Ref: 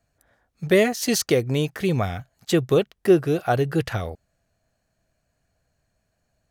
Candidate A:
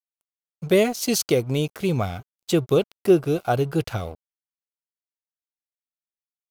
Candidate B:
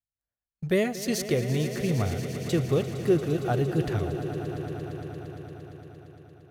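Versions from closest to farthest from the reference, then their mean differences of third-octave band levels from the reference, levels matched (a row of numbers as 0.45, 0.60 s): A, B; 1.5, 7.0 dB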